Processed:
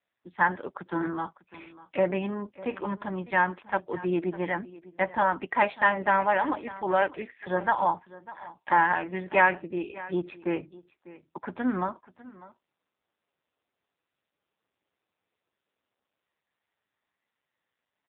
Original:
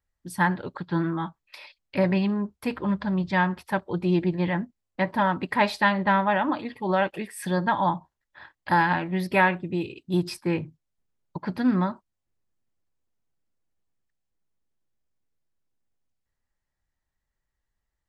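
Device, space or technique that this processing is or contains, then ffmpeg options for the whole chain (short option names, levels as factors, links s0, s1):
satellite phone: -filter_complex "[0:a]asettb=1/sr,asplit=3[s0][s1][s2];[s0]atrim=end=9.584[s3];[s1]atrim=start=9.58:end=10.05,asetpts=PTS-STARTPTS,afade=t=in:d=0.004:c=qsin,afade=t=out:st=0.466:d=0.004:c=qsin,bandreject=f=3800:w=19[s4];[s2]atrim=start=10.046[s5];[s3][s4]acrossfade=d=0.004:c1=hsin:c2=qsin[s6];[s6][s5]acrossfade=d=0.004:c1=qsin:c2=hsin,highpass=63,adynamicequalizer=threshold=0.0158:dfrequency=1100:dqfactor=2:tfrequency=1100:tqfactor=2:attack=5:release=100:ratio=0.375:range=1.5:mode=cutabove:tftype=bell,highpass=350,lowpass=3200,aecho=1:1:599:0.119,volume=1.19" -ar 8000 -c:a libopencore_amrnb -b:a 5900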